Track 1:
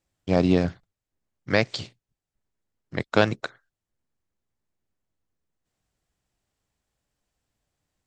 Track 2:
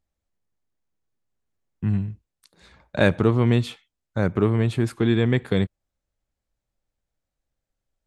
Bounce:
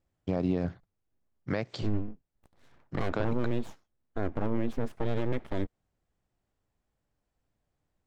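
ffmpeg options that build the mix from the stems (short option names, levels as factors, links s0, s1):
-filter_complex "[0:a]acompressor=threshold=0.0708:ratio=6,volume=1.06[s0];[1:a]aeval=exprs='abs(val(0))':c=same,volume=0.596[s1];[s0][s1]amix=inputs=2:normalize=0,highshelf=f=2200:g=-12,alimiter=limit=0.126:level=0:latency=1:release=74"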